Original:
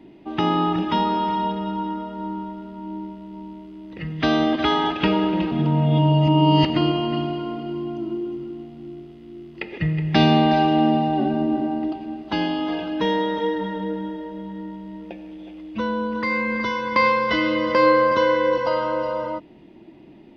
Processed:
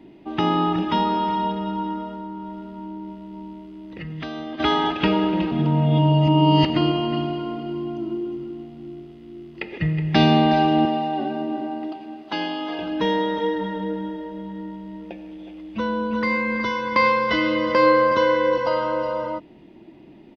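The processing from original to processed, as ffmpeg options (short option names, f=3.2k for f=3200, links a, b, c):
-filter_complex "[0:a]asettb=1/sr,asplit=3[a][b][c];[a]atrim=end=2.134[d];[b]atrim=start=2.13:end=4.6,asetpts=PTS-STARTPTS,afade=t=in:d=0.004:c=qsin,afade=t=out:st=2.466:d=0.004:c=qsin,acompressor=threshold=-29dB:ratio=6:attack=3.2:release=140:knee=1:detection=peak[e];[c]atrim=start=4.596[f];[d][e]acrossfade=d=0.004:c1=hsin:c2=qsin[g];[g][f]acrossfade=d=0.004:c1=qsin:c2=hsin,asettb=1/sr,asplit=3[h][i][j];[h]atrim=end=10.854[k];[i]atrim=start=10.85:end=12.79,asetpts=PTS-STARTPTS,afade=t=in:d=0.004:c=qsin,afade=t=out:st=1.936:d=0.004:c=qsin,highpass=f=470:p=1[l];[j]atrim=start=12.786[m];[k][l]acrossfade=d=0.004:c1=hsin:c2=qsin[n];[n][m]acrossfade=d=0.004:c1=qsin:c2=hsin,asplit=2[o][p];[p]afade=t=in:st=15.34:d=0.01,afade=t=out:st=16:d=0.01,aecho=0:1:350|700:0.446684|0.0446684[q];[o][q]amix=inputs=2:normalize=0"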